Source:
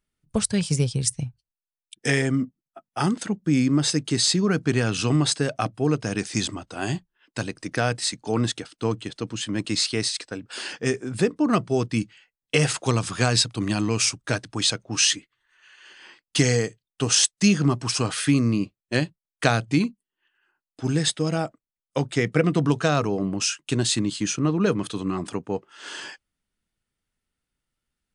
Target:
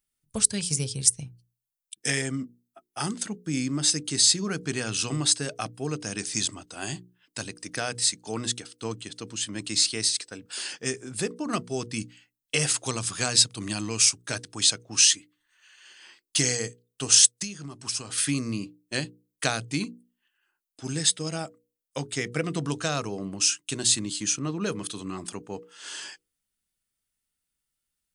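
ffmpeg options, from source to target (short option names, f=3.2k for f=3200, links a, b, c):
-filter_complex "[0:a]bandreject=f=60:t=h:w=6,bandreject=f=120:t=h:w=6,bandreject=f=180:t=h:w=6,bandreject=f=240:t=h:w=6,bandreject=f=300:t=h:w=6,bandreject=f=360:t=h:w=6,bandreject=f=420:t=h:w=6,bandreject=f=480:t=h:w=6,asettb=1/sr,asplit=3[a][b][c];[a]atrim=end=17.324[d];[b]atrim=start=17.32:end=18.18,asetpts=PTS-STARTPTS,afade=t=in:d=0.004:c=qsin,afade=t=out:st=0.856:d=0.004:c=qsin,acompressor=threshold=-28dB:ratio=8[e];[c]atrim=start=18.176[f];[d][e]acrossfade=d=0.004:c1=hsin:c2=qsin[g];[g][f]acrossfade=d=0.004:c1=qsin:c2=hsin,crystalizer=i=3.5:c=0,volume=-8dB"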